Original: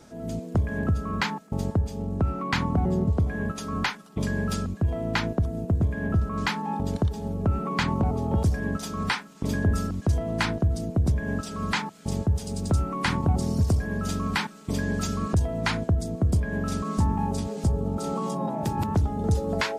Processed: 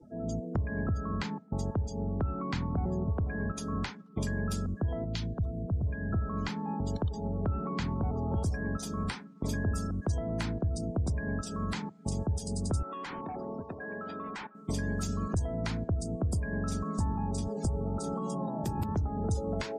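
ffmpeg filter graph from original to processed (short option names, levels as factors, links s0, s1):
-filter_complex "[0:a]asettb=1/sr,asplit=3[s0][s1][s2];[s0]atrim=end=5.044[s3];[s1]atrim=start=5.04:end=6.13,asetpts=PTS-STARTPTS,afade=t=in:d=0.004:c=qsin,afade=t=out:st=1.086:d=0.004:c=qsin,equalizer=f=3200:t=o:w=0.6:g=3.5,acrossover=split=160|3000[s4][s5][s6];[s5]acompressor=threshold=0.0141:ratio=6:attack=3.2:release=140:knee=2.83:detection=peak[s7];[s4][s7][s6]amix=inputs=3:normalize=0[s8];[s2]atrim=start=6.126[s9];[s3][s8]acrossfade=d=0.004:c1=hsin:c2=qsin[s10];[s10][s9]acrossfade=d=0.004:c1=qsin:c2=hsin,asettb=1/sr,asplit=3[s11][s12][s13];[s11]atrim=end=12.824[s14];[s12]atrim=start=12.82:end=14.55,asetpts=PTS-STARTPTS,afade=t=in:d=0.004:c=qsin,afade=t=out:st=1.726:d=0.004:c=qsin,highpass=440,lowpass=2400,asoftclip=type=hard:threshold=0.0251[s15];[s13]atrim=start=14.546[s16];[s14][s15]acrossfade=d=0.004:c1=hsin:c2=qsin[s17];[s17][s16]acrossfade=d=0.004:c1=qsin:c2=hsin,afftdn=nr=34:nf=-45,highshelf=f=5500:g=11,acrossover=split=84|530[s18][s19][s20];[s18]acompressor=threshold=0.0224:ratio=4[s21];[s19]acompressor=threshold=0.0224:ratio=4[s22];[s20]acompressor=threshold=0.00891:ratio=4[s23];[s21][s22][s23]amix=inputs=3:normalize=0"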